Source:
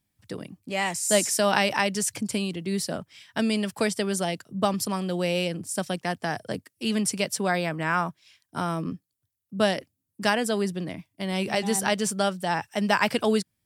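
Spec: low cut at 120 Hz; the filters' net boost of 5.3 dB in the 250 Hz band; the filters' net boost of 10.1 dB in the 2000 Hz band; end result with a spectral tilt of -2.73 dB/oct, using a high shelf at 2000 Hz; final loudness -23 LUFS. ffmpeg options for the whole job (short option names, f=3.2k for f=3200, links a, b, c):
-af "highpass=120,equalizer=f=250:t=o:g=7.5,highshelf=f=2k:g=7.5,equalizer=f=2k:t=o:g=8,volume=-3dB"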